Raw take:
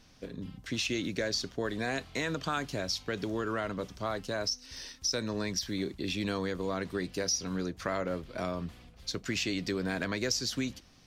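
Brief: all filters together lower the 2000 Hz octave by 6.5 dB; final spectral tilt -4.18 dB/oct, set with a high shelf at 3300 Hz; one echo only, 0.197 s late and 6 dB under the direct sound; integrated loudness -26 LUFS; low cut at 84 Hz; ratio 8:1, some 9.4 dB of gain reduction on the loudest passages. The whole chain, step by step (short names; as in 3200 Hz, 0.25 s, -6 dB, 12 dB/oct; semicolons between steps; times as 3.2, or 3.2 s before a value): HPF 84 Hz; bell 2000 Hz -7.5 dB; high shelf 3300 Hz -3.5 dB; compressor 8:1, threshold -39 dBFS; echo 0.197 s -6 dB; gain +16.5 dB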